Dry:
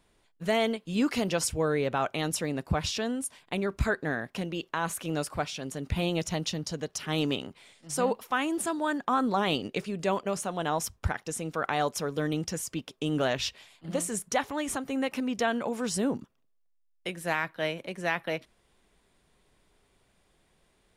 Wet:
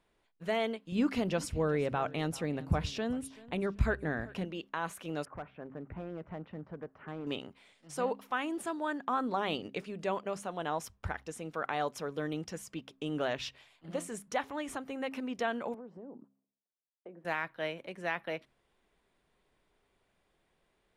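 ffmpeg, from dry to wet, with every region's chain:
-filter_complex "[0:a]asettb=1/sr,asplit=3[a][b][c];[a]atrim=end=0.924[d];[b]atrim=start=0.92:end=4.45,asetpts=PTS-STARTPTS,afade=t=in:d=0.004:c=qsin,afade=t=out:st=3.526:d=0.004:c=qsin,lowshelf=f=200:g=11.5,aecho=1:1:385|770:0.1|0.031,atrim=end_sample=155673[e];[c]atrim=start=4.446[f];[d][e]acrossfade=d=0.004:c1=hsin:c2=qsin[g];[g][f]acrossfade=d=0.004:c1=qsin:c2=hsin,asettb=1/sr,asplit=3[h][i][j];[h]atrim=end=5.254[k];[i]atrim=start=5.25:end=7.27,asetpts=PTS-STARTPTS,afade=t=in:d=0.004:c=qsin,afade=t=out:st=2.016:d=0.004:c=qsin,lowpass=f=1.7k:w=0.5412,lowpass=f=1.7k:w=1.3066,acompressor=threshold=-30dB:ratio=3:attack=3.2:release=140:knee=1:detection=peak,volume=29dB,asoftclip=hard,volume=-29dB[l];[j]atrim=start=7.266[m];[k][l]acrossfade=d=0.004:c1=hsin:c2=qsin[n];[n][m]acrossfade=d=0.004:c1=qsin:c2=hsin,asettb=1/sr,asplit=3[o][p][q];[o]atrim=end=15.744[r];[p]atrim=start=15.74:end=17.25,asetpts=PTS-STARTPTS,afade=t=in:d=0.004:c=qsin,afade=t=out:st=1.506:d=0.004:c=qsin,asuperpass=centerf=410:order=4:qfactor=0.64,acompressor=threshold=-37dB:ratio=8:attack=3.2:release=140:knee=1:detection=peak[s];[q]atrim=start=17.246[t];[r][s]acrossfade=d=0.004:c1=hsin:c2=qsin[u];[u][t]acrossfade=d=0.004:c1=qsin:c2=hsin,bass=f=250:g=-4,treble=f=4k:g=-8,bandreject=f=67.09:t=h:w=4,bandreject=f=134.18:t=h:w=4,bandreject=f=201.27:t=h:w=4,bandreject=f=268.36:t=h:w=4,volume=-5dB"

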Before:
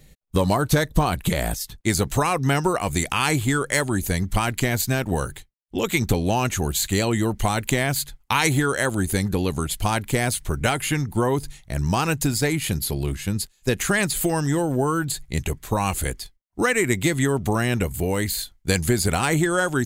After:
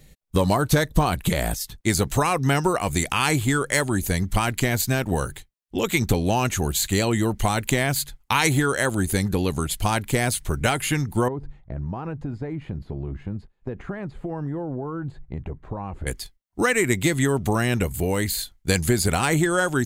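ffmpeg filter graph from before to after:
-filter_complex "[0:a]asettb=1/sr,asplit=3[a][b][c];[a]atrim=end=11.284[d];[b]atrim=start=11.28:end=16.07,asetpts=PTS-STARTPTS,afade=t=in:d=0.004:c=qsin,afade=t=out:st=4.786:d=0.004:c=qsin,acompressor=threshold=-25dB:ratio=6:attack=3.2:release=140:knee=1:detection=peak,lowpass=1k[e];[c]atrim=start=16.066[f];[d][e]acrossfade=d=0.004:c1=hsin:c2=qsin[g];[g][f]acrossfade=d=0.004:c1=qsin:c2=hsin"

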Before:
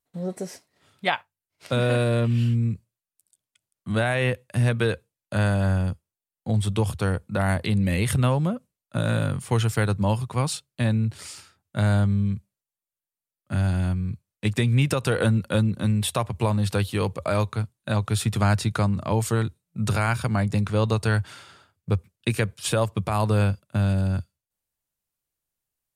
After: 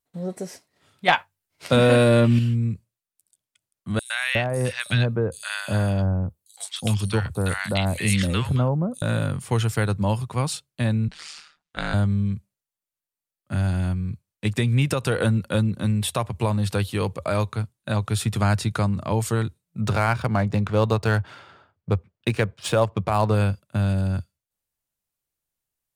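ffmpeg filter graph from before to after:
-filter_complex "[0:a]asettb=1/sr,asplit=3[a][b][c];[a]atrim=end=1.084[d];[b]atrim=start=1.08:end=2.39,asetpts=PTS-STARTPTS,afade=t=in:d=0.004:c=qsin,afade=t=out:st=1.306:d=0.004:c=qsin,bandreject=f=50:t=h:w=6,bandreject=f=100:t=h:w=6,acontrast=66,asplit=2[e][f];[f]adelay=12,volume=-9dB[g];[e][g]amix=inputs=2:normalize=0,atrim=end_sample=57771[h];[c]atrim=start=2.386[i];[d][h]acrossfade=d=0.004:c1=hsin:c2=qsin[j];[j][i]acrossfade=d=0.004:c1=qsin:c2=hsin,asettb=1/sr,asplit=3[k][l][m];[k]atrim=end=3.994[n];[l]atrim=start=3.99:end=9.02,asetpts=PTS-STARTPTS,afade=t=in:d=0.004:c=qsin,afade=t=out:st=5.026:d=0.004:c=qsin,acrossover=split=8500[o][p];[p]acompressor=threshold=-53dB:ratio=4:attack=1:release=60[q];[o][q]amix=inputs=2:normalize=0,highshelf=f=2.7k:g=11.5,acrossover=split=1100|5700[r][s][t];[s]adelay=110[u];[r]adelay=360[v];[v][u][t]amix=inputs=3:normalize=0,atrim=end_sample=221823[w];[m]atrim=start=9.016[x];[n][w]acrossfade=d=0.004:c1=hsin:c2=qsin[y];[y][x]acrossfade=d=0.004:c1=qsin:c2=hsin,asettb=1/sr,asplit=3[z][aa][ab];[z]atrim=end=11.084[ac];[aa]atrim=start=11.08:end=11.94,asetpts=PTS-STARTPTS,afade=t=in:d=0.004:c=qsin,afade=t=out:st=0.856:d=0.004:c=qsin,lowpass=4.6k,tiltshelf=f=690:g=-9,aeval=exprs='val(0)*sin(2*PI*76*n/s)':c=same[ad];[ab]atrim=start=11.936[ae];[ac][ad]acrossfade=d=0.004:c1=hsin:c2=qsin[af];[af][ae]acrossfade=d=0.004:c1=qsin:c2=hsin,asettb=1/sr,asplit=3[ag][ah][ai];[ag]atrim=end=19.814[aj];[ah]atrim=start=19.81:end=23.35,asetpts=PTS-STARTPTS,afade=t=in:d=0.004:c=qsin,afade=t=out:st=3.536:d=0.004:c=qsin,equalizer=f=700:w=0.72:g=4.5,adynamicsmooth=sensitivity=7.5:basefreq=3.1k[ak];[ai]atrim=start=23.346[al];[aj][ak]acrossfade=d=0.004:c1=hsin:c2=qsin[am];[am][al]acrossfade=d=0.004:c1=qsin:c2=hsin"

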